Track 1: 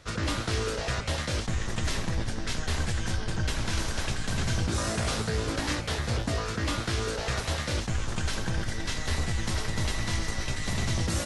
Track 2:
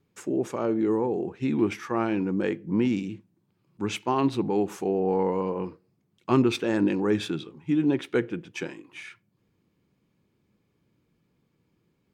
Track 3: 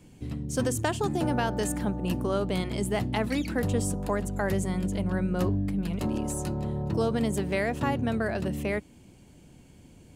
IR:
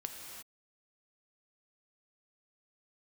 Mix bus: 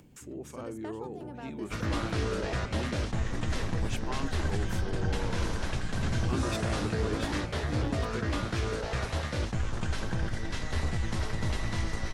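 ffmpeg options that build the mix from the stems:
-filter_complex "[0:a]adelay=1650,volume=-1dB[a];[1:a]crystalizer=i=8:c=0,volume=-15.5dB[b];[2:a]volume=-16dB[c];[a][b][c]amix=inputs=3:normalize=0,highshelf=f=2.8k:g=-9,acompressor=mode=upward:threshold=-46dB:ratio=2.5"

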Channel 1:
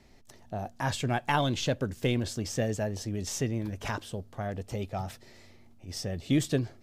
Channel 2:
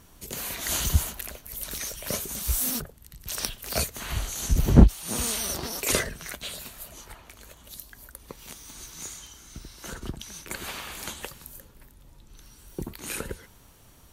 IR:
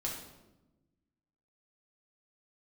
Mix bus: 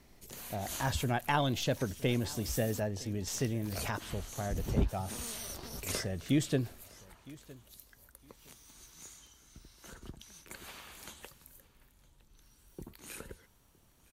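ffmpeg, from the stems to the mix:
-filter_complex "[0:a]volume=-3dB,asplit=3[a][b][c];[b]volume=-21.5dB[d];[1:a]volume=-12.5dB,asplit=2[e][f];[f]volume=-22.5dB[g];[c]apad=whole_len=622699[h];[e][h]sidechaincompress=threshold=-37dB:ratio=8:attack=26:release=117[i];[d][g]amix=inputs=2:normalize=0,aecho=0:1:962|1924|2886:1|0.21|0.0441[j];[a][i][j]amix=inputs=3:normalize=0"

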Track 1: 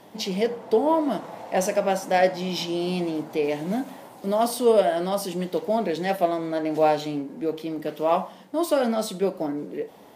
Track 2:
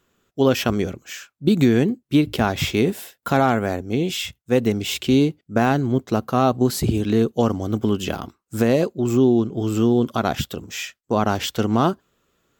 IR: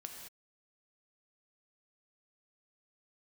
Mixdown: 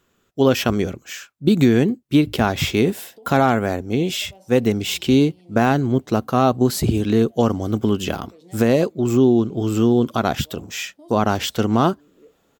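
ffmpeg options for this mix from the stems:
-filter_complex "[0:a]equalizer=f=1.5k:w=1.5:g=-14,acompressor=threshold=-27dB:ratio=6,adelay=2450,volume=-16dB[a];[1:a]volume=1.5dB,asplit=2[b][c];[c]apad=whole_len=556036[d];[a][d]sidechaincompress=threshold=-22dB:ratio=8:attack=16:release=471[e];[e][b]amix=inputs=2:normalize=0"

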